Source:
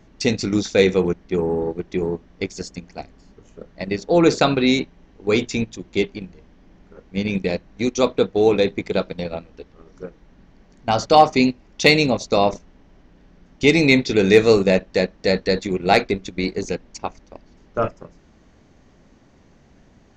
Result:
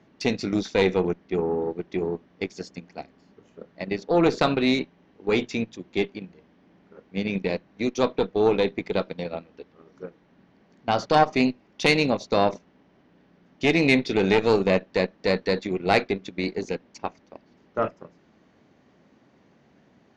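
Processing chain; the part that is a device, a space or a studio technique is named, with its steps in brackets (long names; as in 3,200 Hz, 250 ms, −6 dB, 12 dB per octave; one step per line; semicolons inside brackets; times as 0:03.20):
valve radio (band-pass filter 150–4,400 Hz; tube saturation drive 5 dB, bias 0.55; saturating transformer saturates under 440 Hz)
level −1 dB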